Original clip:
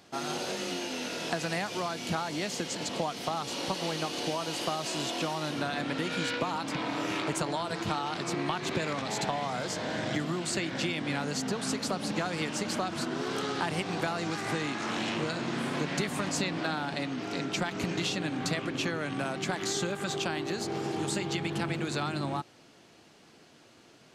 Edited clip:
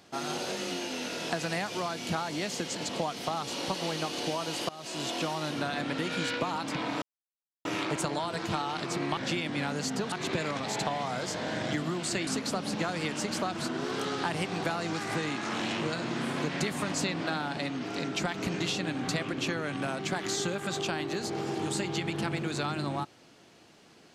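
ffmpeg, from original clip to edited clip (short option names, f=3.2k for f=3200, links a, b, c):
-filter_complex "[0:a]asplit=6[a][b][c][d][e][f];[a]atrim=end=4.69,asetpts=PTS-STARTPTS,afade=t=out:st=4.686:d=0.004:c=hsin:silence=0.11885[g];[b]atrim=start=4.69:end=7.02,asetpts=PTS-STARTPTS,afade=t=in:d=0.4:silence=0.11885,afade=t=out:st=2.326:d=0.004:c=hsin,apad=pad_dur=0.63[h];[c]atrim=start=7.02:end=8.542,asetpts=PTS-STARTPTS,afade=t=in:d=0.004:c=hsin[i];[d]atrim=start=10.688:end=11.642[j];[e]atrim=start=8.538:end=10.692[k];[f]atrim=start=11.638[l];[g][h][i]concat=n=3:v=0:a=1[m];[m][j]acrossfade=d=0.004:c1=hsin:c2=hsin[n];[n][k]acrossfade=d=0.004:c1=hsin:c2=hsin[o];[o][l]acrossfade=d=0.004:c1=hsin:c2=hsin"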